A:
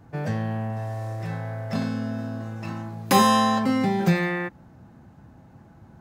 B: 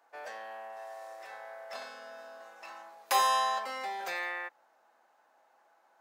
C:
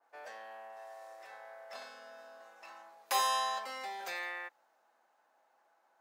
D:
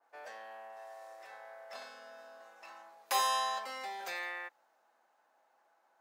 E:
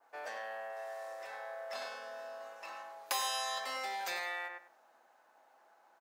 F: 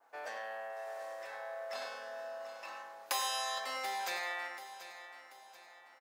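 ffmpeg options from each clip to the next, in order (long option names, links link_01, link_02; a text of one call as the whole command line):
ffmpeg -i in.wav -af "highpass=frequency=590:width=0.5412,highpass=frequency=590:width=1.3066,volume=-6.5dB" out.wav
ffmpeg -i in.wav -af "adynamicequalizer=threshold=0.00631:dfrequency=2500:dqfactor=0.7:tfrequency=2500:tqfactor=0.7:attack=5:release=100:ratio=0.375:range=2:mode=boostabove:tftype=highshelf,volume=-5dB" out.wav
ffmpeg -i in.wav -af anull out.wav
ffmpeg -i in.wav -filter_complex "[0:a]asplit=2[link_01][link_02];[link_02]adelay=98,lowpass=frequency=2700:poles=1,volume=-5.5dB,asplit=2[link_03][link_04];[link_04]adelay=98,lowpass=frequency=2700:poles=1,volume=0.2,asplit=2[link_05][link_06];[link_06]adelay=98,lowpass=frequency=2700:poles=1,volume=0.2[link_07];[link_01][link_03][link_05][link_07]amix=inputs=4:normalize=0,acrossover=split=1400|3400[link_08][link_09][link_10];[link_08]acompressor=threshold=-45dB:ratio=4[link_11];[link_09]acompressor=threshold=-48dB:ratio=4[link_12];[link_10]acompressor=threshold=-42dB:ratio=4[link_13];[link_11][link_12][link_13]amix=inputs=3:normalize=0,volume=5dB" out.wav
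ffmpeg -i in.wav -af "aecho=1:1:735|1470|2205|2940:0.224|0.094|0.0395|0.0166" out.wav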